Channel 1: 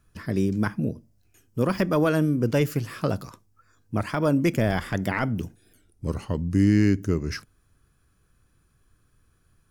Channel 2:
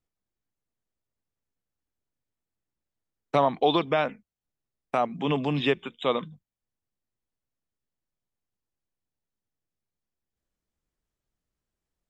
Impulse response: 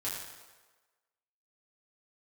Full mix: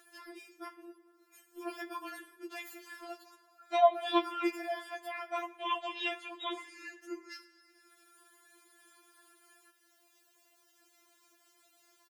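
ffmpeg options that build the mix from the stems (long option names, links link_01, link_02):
-filter_complex "[0:a]bandreject=frequency=5800:width=12,volume=-10dB,asplit=3[link_01][link_02][link_03];[link_02]volume=-13dB[link_04];[1:a]adelay=400,volume=-0.5dB,asplit=2[link_05][link_06];[link_06]volume=-22.5dB[link_07];[link_03]apad=whole_len=550838[link_08];[link_05][link_08]sidechaincompress=threshold=-34dB:ratio=8:attack=9.3:release=423[link_09];[2:a]atrim=start_sample=2205[link_10];[link_04][link_07]amix=inputs=2:normalize=0[link_11];[link_11][link_10]afir=irnorm=-1:irlink=0[link_12];[link_01][link_09][link_12]amix=inputs=3:normalize=0,highpass=450,acompressor=mode=upward:threshold=-43dB:ratio=2.5,afftfilt=real='re*4*eq(mod(b,16),0)':imag='im*4*eq(mod(b,16),0)':win_size=2048:overlap=0.75"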